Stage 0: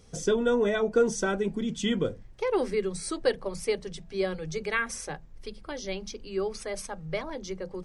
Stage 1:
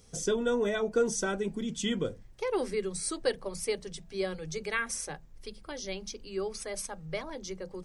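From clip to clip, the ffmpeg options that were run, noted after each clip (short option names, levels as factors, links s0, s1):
-af "highshelf=f=5900:g=10,volume=0.631"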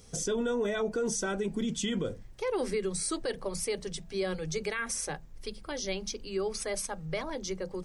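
-af "alimiter=level_in=1.41:limit=0.0631:level=0:latency=1:release=64,volume=0.708,volume=1.58"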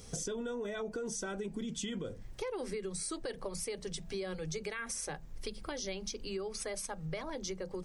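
-af "acompressor=threshold=0.01:ratio=6,volume=1.5"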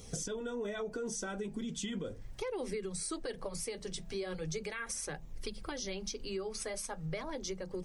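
-af "flanger=delay=0.3:depth=8.7:regen=-52:speed=0.38:shape=sinusoidal,volume=1.58"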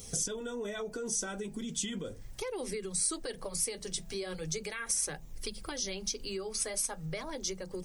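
-af "crystalizer=i=2:c=0"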